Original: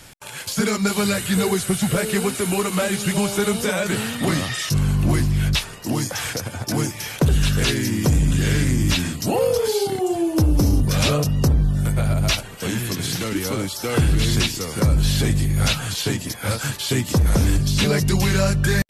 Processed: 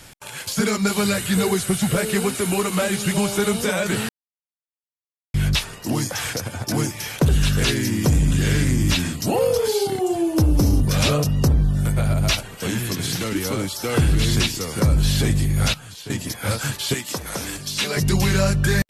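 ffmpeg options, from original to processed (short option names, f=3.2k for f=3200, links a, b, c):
-filter_complex "[0:a]asettb=1/sr,asplit=3[a][b][c];[a]atrim=end=16.944[d];[b]atrim=start=16.94:end=17.97,asetpts=PTS-STARTPTS,afade=t=in:d=0.004:c=qsin,afade=t=out:st=1.026:d=0.004:c=qsin,highpass=f=870:p=1[e];[c]atrim=start=17.966[f];[d][e]acrossfade=d=0.004:c1=hsin:c2=qsin[g];[g][f]acrossfade=d=0.004:c1=qsin:c2=hsin,asplit=5[h][i][j][k][l];[h]atrim=end=4.09,asetpts=PTS-STARTPTS,afade=t=out:st=4.086:d=0.004:c=hsin[m];[i]atrim=start=4.09:end=5.34,asetpts=PTS-STARTPTS,volume=0[n];[j]atrim=start=5.34:end=15.74,asetpts=PTS-STARTPTS,afade=t=in:d=0.004:c=hsin,afade=t=out:st=10.16:d=0.24:c=log:silence=0.223872[o];[k]atrim=start=15.74:end=16.1,asetpts=PTS-STARTPTS,volume=-13dB[p];[l]atrim=start=16.1,asetpts=PTS-STARTPTS,afade=t=in:d=0.24:c=log:silence=0.223872[q];[m][n][o][p][q]concat=n=5:v=0:a=1"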